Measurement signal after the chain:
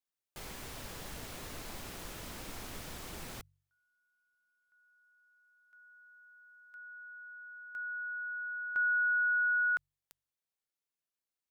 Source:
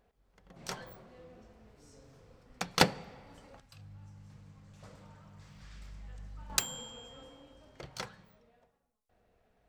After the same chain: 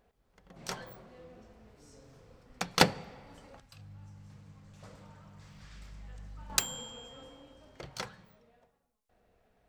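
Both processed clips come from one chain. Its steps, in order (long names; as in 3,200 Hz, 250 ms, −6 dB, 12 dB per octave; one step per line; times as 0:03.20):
hum removal 47.22 Hz, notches 3
level +1.5 dB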